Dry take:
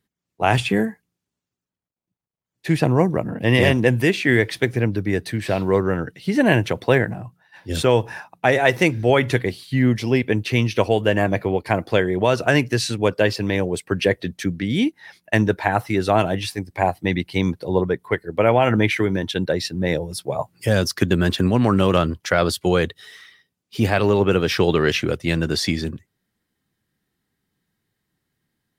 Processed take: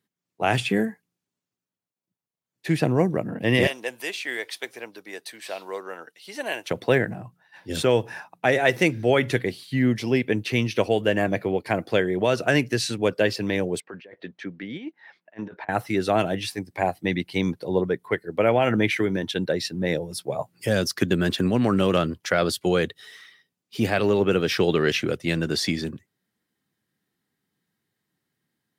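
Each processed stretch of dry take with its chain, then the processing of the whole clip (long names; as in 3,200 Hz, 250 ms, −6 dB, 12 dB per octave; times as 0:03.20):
0:03.67–0:06.71: high-pass filter 860 Hz + parametric band 1,800 Hz −7.5 dB 1.2 octaves
0:13.80–0:15.69: high-pass filter 860 Hz 6 dB per octave + compressor whose output falls as the input rises −29 dBFS, ratio −0.5 + head-to-tape spacing loss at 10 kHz 36 dB
whole clip: dynamic equaliser 970 Hz, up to −5 dB, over −36 dBFS, Q 2.4; high-pass filter 130 Hz 12 dB per octave; level −2.5 dB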